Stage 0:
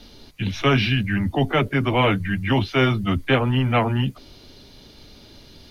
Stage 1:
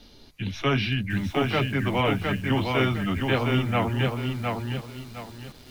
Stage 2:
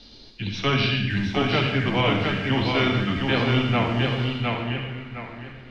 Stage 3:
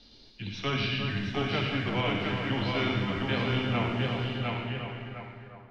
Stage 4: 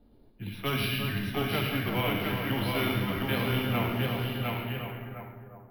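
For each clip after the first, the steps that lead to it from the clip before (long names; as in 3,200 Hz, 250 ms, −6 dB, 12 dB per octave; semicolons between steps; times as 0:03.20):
feedback echo at a low word length 710 ms, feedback 35%, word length 7 bits, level −3.5 dB; level −5.5 dB
low-pass filter sweep 4,600 Hz → 2,100 Hz, 0:04.15–0:04.91; on a send at −3.5 dB: convolution reverb RT60 0.80 s, pre-delay 52 ms
fade-out on the ending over 0.67 s; echo with a time of its own for lows and highs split 1,700 Hz, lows 350 ms, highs 112 ms, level −6.5 dB; level −8 dB
low-pass that shuts in the quiet parts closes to 730 Hz, open at −26 dBFS; bad sample-rate conversion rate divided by 3×, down filtered, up hold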